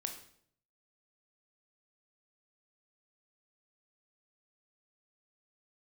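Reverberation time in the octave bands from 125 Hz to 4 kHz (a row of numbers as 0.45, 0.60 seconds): 0.85, 0.75, 0.70, 0.55, 0.55, 0.55 seconds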